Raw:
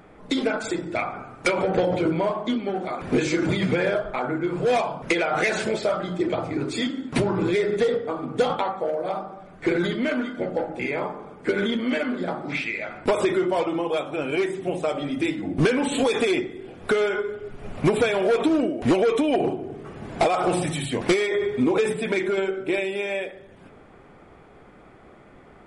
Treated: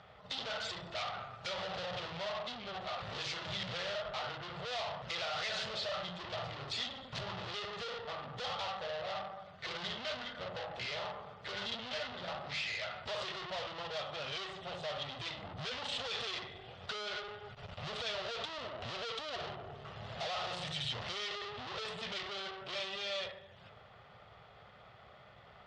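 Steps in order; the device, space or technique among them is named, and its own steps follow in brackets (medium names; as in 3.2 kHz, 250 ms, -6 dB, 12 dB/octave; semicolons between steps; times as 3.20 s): scooped metal amplifier (valve stage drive 35 dB, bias 0.65; cabinet simulation 99–4400 Hz, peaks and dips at 110 Hz +5 dB, 310 Hz -3 dB, 600 Hz +4 dB, 990 Hz -4 dB, 1.6 kHz -7 dB, 2.3 kHz -10 dB; amplifier tone stack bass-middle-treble 10-0-10); trim +10 dB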